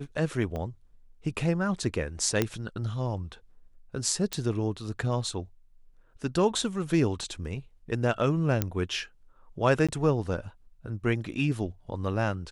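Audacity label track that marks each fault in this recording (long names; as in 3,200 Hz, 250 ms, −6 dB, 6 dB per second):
0.560000	0.560000	click −23 dBFS
2.420000	2.420000	click −10 dBFS
4.330000	4.330000	click −14 dBFS
8.620000	8.620000	click −11 dBFS
9.870000	9.890000	drop-out 16 ms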